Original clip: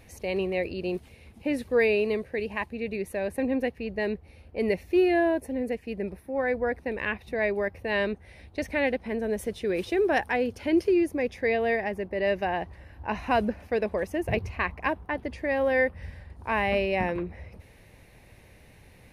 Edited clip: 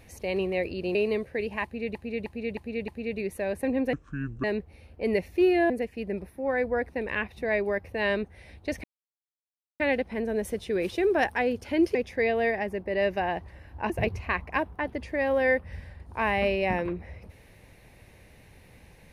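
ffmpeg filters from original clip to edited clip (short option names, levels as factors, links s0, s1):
-filter_complex "[0:a]asplit=12[s0][s1][s2][s3][s4][s5][s6][s7][s8][s9][s10][s11];[s0]atrim=end=0.952[s12];[s1]atrim=start=1.938:end=2.942[s13];[s2]atrim=start=2.628:end=2.942[s14];[s3]atrim=start=2.628:end=2.942[s15];[s4]atrim=start=2.628:end=2.942[s16];[s5]atrim=start=2.628:end=3.684[s17];[s6]atrim=start=3.68:end=3.99,asetpts=PTS-STARTPTS,asetrate=26901,aresample=44100,atrim=end_sample=22411,asetpts=PTS-STARTPTS[s18];[s7]atrim=start=3.986:end=5.252[s19];[s8]atrim=start=5.598:end=8.74,asetpts=PTS-STARTPTS,afade=t=out:st=3.138:d=0.004:c=hsin,apad=pad_dur=0.96[s20];[s9]atrim=start=8.74:end=10.892,asetpts=PTS-STARTPTS,afade=t=in:d=0.004:c=hsin[s21];[s10]atrim=start=11.198:end=13.152[s22];[s11]atrim=start=14.198[s23];[s12][s13]acrossfade=d=0.004:c1=hsin:c2=hsin[s24];[s24][s14]acrossfade=d=0.004:c1=hsin:c2=hsin[s25];[s25][s15]acrossfade=d=0.004:c1=hsin:c2=hsin[s26];[s26][s16]acrossfade=d=0.004:c1=hsin:c2=hsin[s27];[s27][s17]acrossfade=d=0.004:c1=hsin:c2=hsin[s28];[s28][s18]acrossfade=d=0.004:c1=hsin:c2=hsin[s29];[s29][s19]acrossfade=d=0.004:c1=hsin:c2=hsin[s30];[s20][s21]concat=n=2:v=0:a=1[s31];[s30][s31]acrossfade=d=0.004:c1=hsin:c2=hsin[s32];[s32][s22]acrossfade=d=0.004:c1=hsin:c2=hsin[s33];[s33][s23]acrossfade=d=0.004:c1=hsin:c2=hsin"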